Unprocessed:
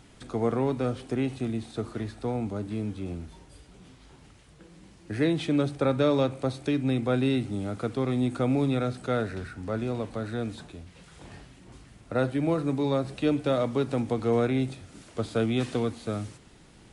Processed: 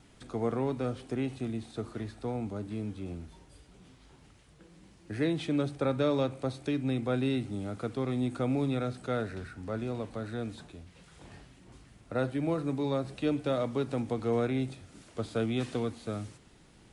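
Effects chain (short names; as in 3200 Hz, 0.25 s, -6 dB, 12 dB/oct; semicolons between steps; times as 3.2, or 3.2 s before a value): gate with hold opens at -48 dBFS; gain -4.5 dB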